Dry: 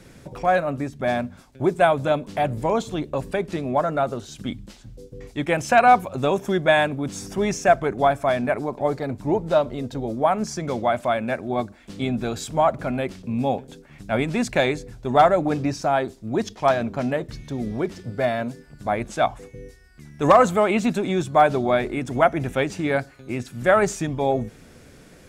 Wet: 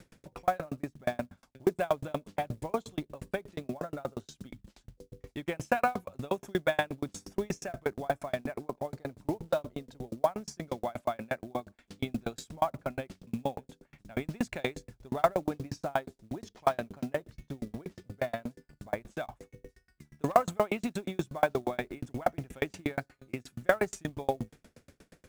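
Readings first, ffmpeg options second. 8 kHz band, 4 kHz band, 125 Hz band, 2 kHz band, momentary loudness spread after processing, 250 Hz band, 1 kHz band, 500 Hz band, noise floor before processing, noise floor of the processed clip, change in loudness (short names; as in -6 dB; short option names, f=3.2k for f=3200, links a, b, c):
-11.5 dB, -12.0 dB, -12.0 dB, -12.0 dB, 14 LU, -11.5 dB, -13.0 dB, -12.0 dB, -49 dBFS, -75 dBFS, -12.0 dB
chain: -af "acrusher=bits=6:mode=log:mix=0:aa=0.000001,aeval=exprs='val(0)*pow(10,-37*if(lt(mod(8.4*n/s,1),2*abs(8.4)/1000),1-mod(8.4*n/s,1)/(2*abs(8.4)/1000),(mod(8.4*n/s,1)-2*abs(8.4)/1000)/(1-2*abs(8.4)/1000))/20)':c=same,volume=-2.5dB"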